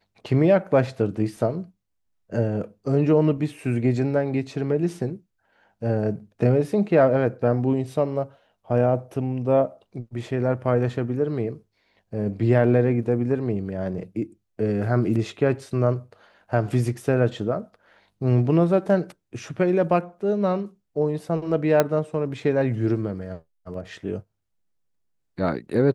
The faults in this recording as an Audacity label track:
21.800000	21.800000	click −5 dBFS

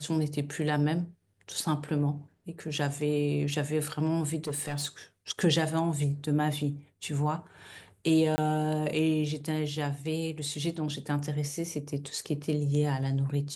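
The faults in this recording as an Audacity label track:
4.470000	4.860000	clipping −28 dBFS
8.360000	8.380000	drop-out 20 ms

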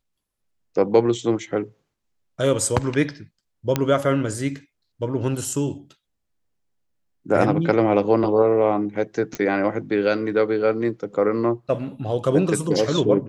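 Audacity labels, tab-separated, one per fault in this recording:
3.760000	3.760000	click −6 dBFS
9.350000	9.350000	click −13 dBFS

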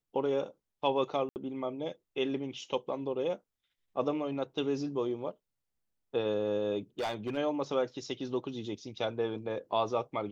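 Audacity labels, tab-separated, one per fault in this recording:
1.290000	1.360000	drop-out 69 ms
6.990000	7.380000	clipping −29.5 dBFS

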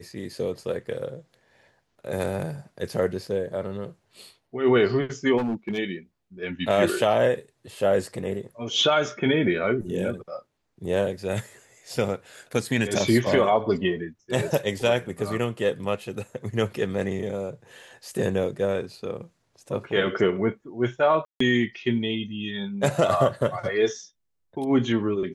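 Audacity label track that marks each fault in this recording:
5.370000	5.790000	clipping −23 dBFS
21.250000	21.400000	drop-out 154 ms

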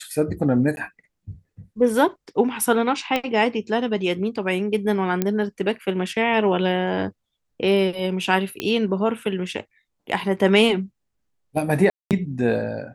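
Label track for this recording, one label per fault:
0.760000	0.770000	drop-out 11 ms
3.160000	3.160000	click −9 dBFS
5.220000	5.220000	click −8 dBFS
8.600000	8.600000	click −10 dBFS
11.900000	12.110000	drop-out 208 ms

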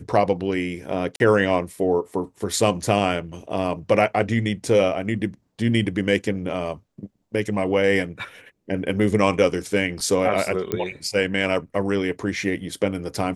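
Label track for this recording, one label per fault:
1.160000	1.200000	drop-out 41 ms
10.720000	10.720000	click −10 dBFS

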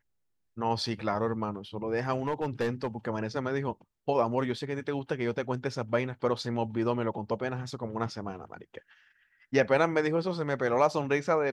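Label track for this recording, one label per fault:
2.180000	2.870000	clipping −24 dBFS

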